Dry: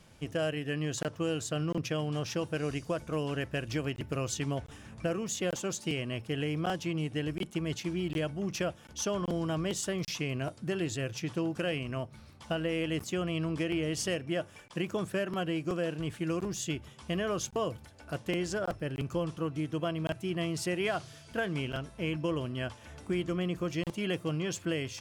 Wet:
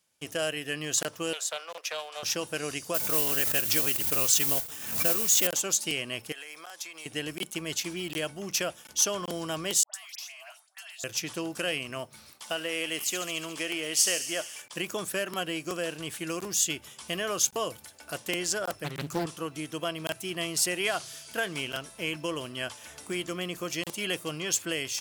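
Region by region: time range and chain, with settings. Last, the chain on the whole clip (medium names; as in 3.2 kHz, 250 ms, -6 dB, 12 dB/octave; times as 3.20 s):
1.33–2.23 s: steep high-pass 520 Hz + treble shelf 4.2 kHz -7 dB + loudspeaker Doppler distortion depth 0.14 ms
2.94–5.47 s: modulation noise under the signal 13 dB + swell ahead of each attack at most 77 dB/s
6.32–7.06 s: high-pass 810 Hz + band-stop 2.9 kHz, Q 6.5 + compression 10:1, threshold -43 dBFS
9.83–11.04 s: brick-wall FIR high-pass 610 Hz + compression 10:1, threshold -47 dBFS + phase dispersion highs, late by 111 ms, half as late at 1.4 kHz
12.32–14.62 s: high-pass 350 Hz 6 dB/octave + feedback echo behind a high-pass 71 ms, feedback 74%, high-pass 3.3 kHz, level -8.5 dB
18.84–19.26 s: peaking EQ 160 Hz +14 dB 0.35 oct + loudspeaker Doppler distortion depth 0.92 ms
whole clip: gate with hold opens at -44 dBFS; RIAA curve recording; trim +2.5 dB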